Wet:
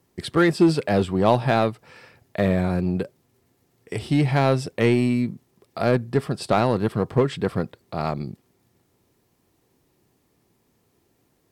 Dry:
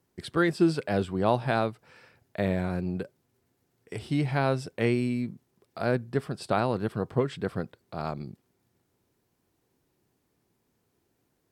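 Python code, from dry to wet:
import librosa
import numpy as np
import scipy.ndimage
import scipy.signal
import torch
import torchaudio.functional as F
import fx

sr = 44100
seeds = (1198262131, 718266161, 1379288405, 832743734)

p1 = fx.notch(x, sr, hz=1500.0, q=13.0)
p2 = 10.0 ** (-23.0 / 20.0) * (np.abs((p1 / 10.0 ** (-23.0 / 20.0) + 3.0) % 4.0 - 2.0) - 1.0)
p3 = p1 + (p2 * 10.0 ** (-11.0 / 20.0))
y = p3 * 10.0 ** (5.5 / 20.0)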